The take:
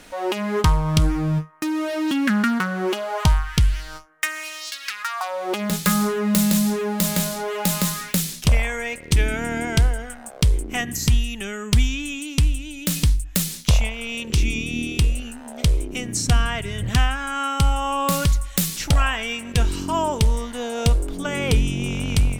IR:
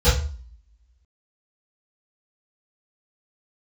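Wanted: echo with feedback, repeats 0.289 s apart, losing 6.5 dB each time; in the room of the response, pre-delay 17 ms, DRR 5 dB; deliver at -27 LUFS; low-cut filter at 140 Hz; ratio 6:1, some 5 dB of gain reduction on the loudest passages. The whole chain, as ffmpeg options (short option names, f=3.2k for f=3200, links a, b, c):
-filter_complex "[0:a]highpass=140,acompressor=threshold=-22dB:ratio=6,aecho=1:1:289|578|867|1156|1445|1734:0.473|0.222|0.105|0.0491|0.0231|0.0109,asplit=2[a][b];[1:a]atrim=start_sample=2205,adelay=17[c];[b][c]afir=irnorm=-1:irlink=0,volume=-24.5dB[d];[a][d]amix=inputs=2:normalize=0,volume=-4.5dB"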